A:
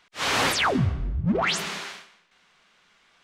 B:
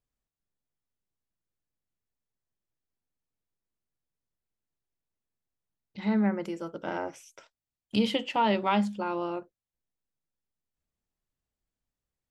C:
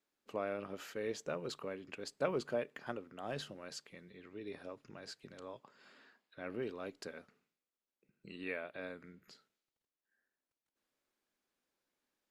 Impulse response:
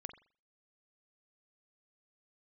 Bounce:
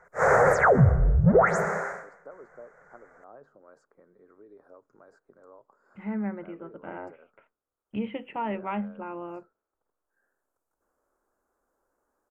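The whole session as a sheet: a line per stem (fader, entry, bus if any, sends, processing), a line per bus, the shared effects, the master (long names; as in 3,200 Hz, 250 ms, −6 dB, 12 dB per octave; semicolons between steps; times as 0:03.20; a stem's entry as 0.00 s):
+1.5 dB, 0.00 s, bus A, no send, drawn EQ curve 100 Hz 0 dB, 150 Hz +8 dB, 290 Hz −17 dB, 500 Hz +3 dB, 1,100 Hz −12 dB, 2,000 Hz +4 dB, 3,100 Hz −18 dB, 4,400 Hz −19 dB, 6,800 Hz −11 dB, 9,700 Hz −21 dB
−6.0 dB, 0.00 s, no bus, no send, Butterworth low-pass 2,600 Hz 48 dB per octave
−19.5 dB, 0.05 s, bus A, no send, treble cut that deepens with the level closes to 2,900 Hz, closed at −37.5 dBFS; multiband upward and downward compressor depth 70%
bus A: 0.0 dB, drawn EQ curve 170 Hz 0 dB, 450 Hz +13 dB, 1,400 Hz +13 dB, 2,900 Hz −24 dB, 7,000 Hz +5 dB; brickwall limiter −11 dBFS, peak gain reduction 7 dB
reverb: not used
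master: low-shelf EQ 70 Hz +8.5 dB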